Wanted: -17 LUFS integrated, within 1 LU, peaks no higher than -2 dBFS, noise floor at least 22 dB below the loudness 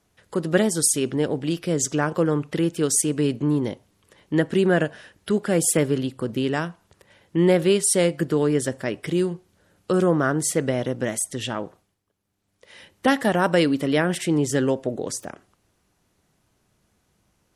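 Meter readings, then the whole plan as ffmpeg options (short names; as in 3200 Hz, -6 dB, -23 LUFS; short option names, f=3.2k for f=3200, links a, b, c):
loudness -22.5 LUFS; peak -4.0 dBFS; loudness target -17.0 LUFS
-> -af "volume=5.5dB,alimiter=limit=-2dB:level=0:latency=1"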